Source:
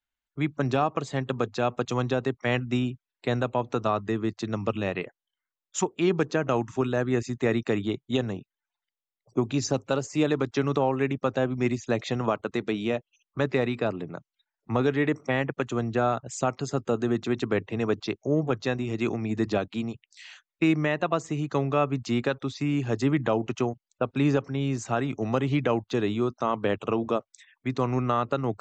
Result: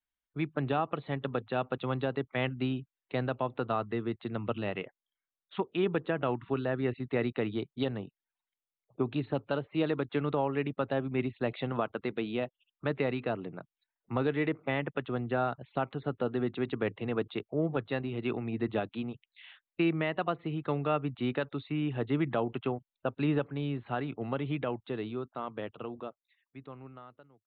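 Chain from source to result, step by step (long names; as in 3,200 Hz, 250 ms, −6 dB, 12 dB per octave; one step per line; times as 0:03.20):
fade-out on the ending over 4.22 s
downsampling to 8,000 Hz
wrong playback speed 24 fps film run at 25 fps
level −5.5 dB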